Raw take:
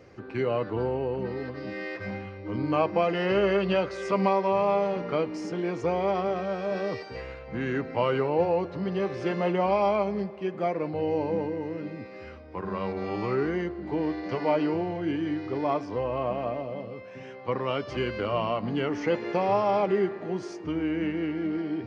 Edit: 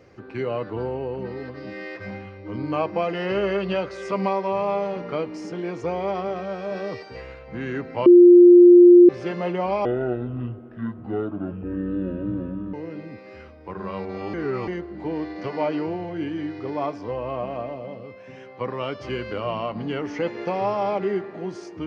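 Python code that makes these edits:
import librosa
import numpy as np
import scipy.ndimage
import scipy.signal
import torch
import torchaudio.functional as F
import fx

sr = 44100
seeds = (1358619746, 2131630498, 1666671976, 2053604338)

y = fx.edit(x, sr, fx.bleep(start_s=8.06, length_s=1.03, hz=352.0, db=-6.0),
    fx.speed_span(start_s=9.85, length_s=1.76, speed=0.61),
    fx.reverse_span(start_s=13.21, length_s=0.34), tone=tone)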